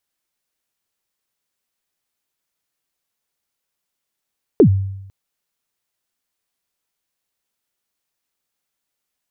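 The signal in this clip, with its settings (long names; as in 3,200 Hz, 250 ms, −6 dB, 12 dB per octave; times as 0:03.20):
synth kick length 0.50 s, from 480 Hz, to 97 Hz, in 87 ms, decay 0.87 s, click off, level −4 dB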